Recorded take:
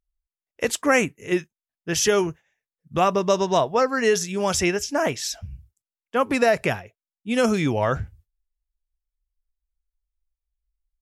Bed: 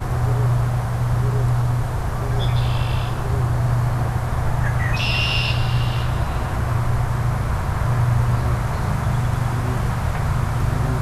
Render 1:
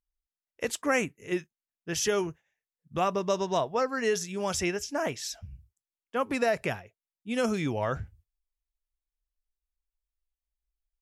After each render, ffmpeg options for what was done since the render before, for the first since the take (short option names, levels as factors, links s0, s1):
-af "volume=0.422"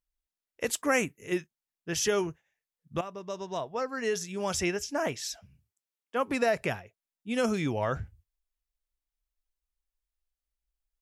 -filter_complex "[0:a]asettb=1/sr,asplit=3[s0][s1][s2];[s0]atrim=end=0.644[s3];[s1]atrim=start=0.64:end=1.38,asetpts=PTS-STARTPTS,afade=t=in:d=0.004:c=qsin,afade=t=out:st=0.736:d=0.004:c=qsin,highshelf=f=10000:g=9.5[s4];[s2]atrim=start=1.376[s5];[s3][s4]acrossfade=d=0.004:c1=hsin:c2=qsin[s6];[s6][s5]acrossfade=d=0.004:c1=qsin:c2=hsin,asettb=1/sr,asplit=3[s7][s8][s9];[s7]atrim=end=5.364[s10];[s8]atrim=start=5.36:end=6.28,asetpts=PTS-STARTPTS,afade=t=in:d=0.004:c=qsin,afade=t=out:st=0.916:d=0.004:c=qsin,highpass=200[s11];[s9]atrim=start=6.276[s12];[s10][s11]acrossfade=d=0.004:c1=hsin:c2=qsin[s13];[s13][s12]acrossfade=d=0.004:c1=qsin:c2=hsin,asplit=2[s14][s15];[s14]atrim=end=3.01,asetpts=PTS-STARTPTS,afade=t=out:st=3.006:d=0.004:c=hsin:silence=0.177828[s16];[s15]atrim=start=3.01,asetpts=PTS-STARTPTS,afade=t=in:d=1.63:silence=0.177828[s17];[s16][s17]concat=n=2:v=0:a=1"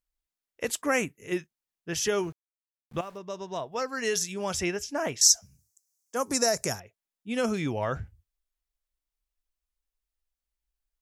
-filter_complex "[0:a]asettb=1/sr,asplit=3[s0][s1][s2];[s0]atrim=end=2.144[s3];[s1]atrim=start=2.14:end=3.18,asetpts=PTS-STARTPTS,afade=t=in:d=0.004:c=qsin,afade=t=out:st=1.036:d=0.004:c=qsin,aeval=exprs='val(0)*gte(abs(val(0)),0.00282)':c=same[s4];[s2]atrim=start=3.176[s5];[s3][s4]acrossfade=d=0.004:c1=hsin:c2=qsin[s6];[s6][s5]acrossfade=d=0.004:c1=qsin:c2=hsin,asettb=1/sr,asplit=3[s7][s8][s9];[s7]atrim=end=3.724[s10];[s8]atrim=start=3.72:end=4.34,asetpts=PTS-STARTPTS,afade=t=in:d=0.004:c=qsin,afade=t=out:st=0.616:d=0.004:c=qsin,highshelf=f=2700:g=10[s11];[s9]atrim=start=4.336[s12];[s10][s11]acrossfade=d=0.004:c1=hsin:c2=qsin[s13];[s13][s12]acrossfade=d=0.004:c1=qsin:c2=hsin,asettb=1/sr,asplit=3[s14][s15][s16];[s14]atrim=end=5.214[s17];[s15]atrim=start=5.21:end=6.8,asetpts=PTS-STARTPTS,afade=t=in:d=0.004:c=qsin,afade=t=out:st=1.586:d=0.004:c=qsin,highshelf=f=4300:t=q:w=3:g=13.5[s18];[s16]atrim=start=6.796[s19];[s17][s18]acrossfade=d=0.004:c1=hsin:c2=qsin[s20];[s20][s19]acrossfade=d=0.004:c1=qsin:c2=hsin"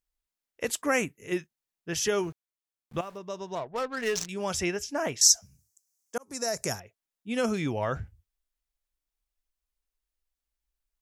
-filter_complex "[0:a]asettb=1/sr,asplit=3[s0][s1][s2];[s0]atrim=end=3.554[s3];[s1]atrim=start=3.55:end=4.29,asetpts=PTS-STARTPTS,afade=t=in:d=0.004:c=qsin,afade=t=out:st=0.736:d=0.004:c=qsin,adynamicsmooth=sensitivity=6:basefreq=600[s4];[s2]atrim=start=4.286[s5];[s3][s4]acrossfade=d=0.004:c1=hsin:c2=qsin[s6];[s6][s5]acrossfade=d=0.004:c1=qsin:c2=hsin,asplit=2[s7][s8];[s7]atrim=end=6.18,asetpts=PTS-STARTPTS,afade=t=out:st=6.176:d=0.004:c=hsin[s9];[s8]atrim=start=6.18,asetpts=PTS-STARTPTS,afade=t=in:d=0.56[s10];[s9][s10]concat=n=2:v=0:a=1"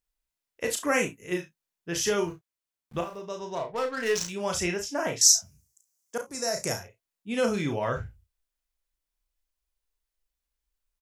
-filter_complex "[0:a]asplit=2[s0][s1];[s1]adelay=33,volume=0.376[s2];[s0][s2]amix=inputs=2:normalize=0,aecho=1:1:35|53:0.447|0.168"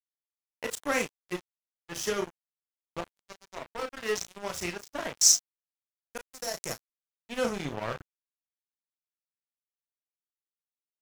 -af "acrusher=bits=10:mix=0:aa=0.000001,aeval=exprs='sgn(val(0))*max(abs(val(0))-0.0299,0)':c=same"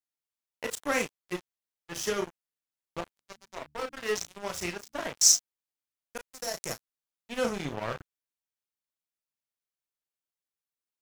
-filter_complex "[0:a]asettb=1/sr,asplit=3[s0][s1][s2];[s0]atrim=end=3.184[s3];[s1]atrim=start=3.18:end=5.09,asetpts=PTS-STARTPTS,afade=t=in:d=0.004:c=qsin,afade=t=out:st=1.906:d=0.004:c=qsin,bandreject=f=73.48:t=h:w=4,bandreject=f=146.96:t=h:w=4,bandreject=f=220.44:t=h:w=4,bandreject=f=293.92:t=h:w=4[s4];[s2]atrim=start=5.086[s5];[s3][s4]acrossfade=d=0.004:c1=hsin:c2=qsin[s6];[s6][s5]acrossfade=d=0.004:c1=qsin:c2=hsin"